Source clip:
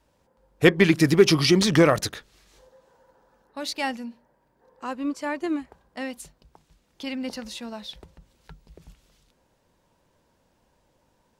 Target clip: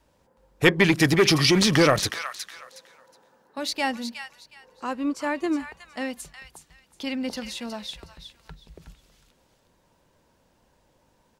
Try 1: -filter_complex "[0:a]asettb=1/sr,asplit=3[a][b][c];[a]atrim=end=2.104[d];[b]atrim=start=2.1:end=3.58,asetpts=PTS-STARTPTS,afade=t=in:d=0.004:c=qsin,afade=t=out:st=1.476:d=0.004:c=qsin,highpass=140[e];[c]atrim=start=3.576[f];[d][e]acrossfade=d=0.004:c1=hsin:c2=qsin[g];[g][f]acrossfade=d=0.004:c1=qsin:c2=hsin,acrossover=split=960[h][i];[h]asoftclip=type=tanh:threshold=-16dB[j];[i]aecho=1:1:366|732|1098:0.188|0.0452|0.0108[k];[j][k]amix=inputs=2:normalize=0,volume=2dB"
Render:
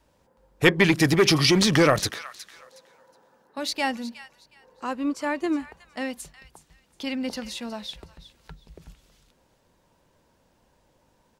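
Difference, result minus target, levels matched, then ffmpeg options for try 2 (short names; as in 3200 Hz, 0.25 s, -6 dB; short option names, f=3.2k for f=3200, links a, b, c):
echo-to-direct -6.5 dB
-filter_complex "[0:a]asettb=1/sr,asplit=3[a][b][c];[a]atrim=end=2.104[d];[b]atrim=start=2.1:end=3.58,asetpts=PTS-STARTPTS,afade=t=in:d=0.004:c=qsin,afade=t=out:st=1.476:d=0.004:c=qsin,highpass=140[e];[c]atrim=start=3.576[f];[d][e]acrossfade=d=0.004:c1=hsin:c2=qsin[g];[g][f]acrossfade=d=0.004:c1=qsin:c2=hsin,acrossover=split=960[h][i];[h]asoftclip=type=tanh:threshold=-16dB[j];[i]aecho=1:1:366|732|1098:0.398|0.0955|0.0229[k];[j][k]amix=inputs=2:normalize=0,volume=2dB"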